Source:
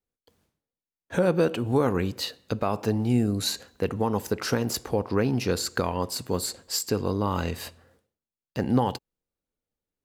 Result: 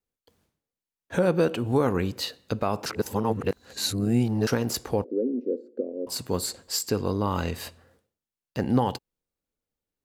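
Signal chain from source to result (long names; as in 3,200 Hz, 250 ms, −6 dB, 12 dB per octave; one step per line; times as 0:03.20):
0:02.86–0:04.47: reverse
0:05.04–0:06.07: elliptic band-pass filter 240–540 Hz, stop band 40 dB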